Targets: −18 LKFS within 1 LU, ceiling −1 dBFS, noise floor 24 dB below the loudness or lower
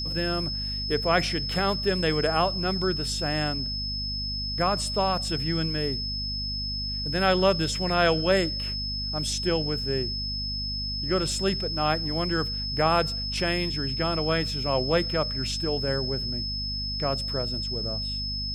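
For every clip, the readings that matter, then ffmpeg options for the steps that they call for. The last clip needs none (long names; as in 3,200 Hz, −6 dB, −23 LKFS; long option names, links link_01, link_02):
mains hum 50 Hz; hum harmonics up to 250 Hz; level of the hum −32 dBFS; interfering tone 5,200 Hz; level of the tone −30 dBFS; integrated loudness −26.0 LKFS; sample peak −7.5 dBFS; target loudness −18.0 LKFS
→ -af "bandreject=frequency=50:width_type=h:width=4,bandreject=frequency=100:width_type=h:width=4,bandreject=frequency=150:width_type=h:width=4,bandreject=frequency=200:width_type=h:width=4,bandreject=frequency=250:width_type=h:width=4"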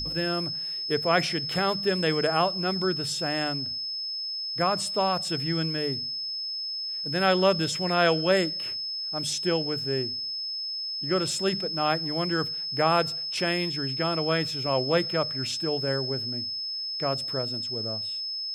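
mains hum none found; interfering tone 5,200 Hz; level of the tone −30 dBFS
→ -af "bandreject=frequency=5200:width=30"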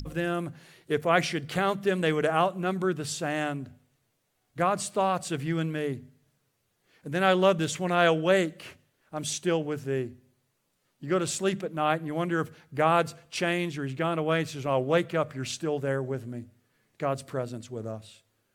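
interfering tone none found; integrated loudness −28.0 LKFS; sample peak −8.0 dBFS; target loudness −18.0 LKFS
→ -af "volume=10dB,alimiter=limit=-1dB:level=0:latency=1"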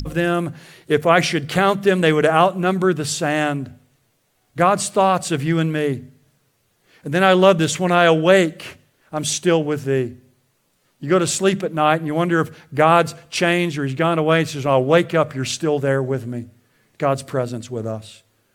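integrated loudness −18.5 LKFS; sample peak −1.0 dBFS; background noise floor −65 dBFS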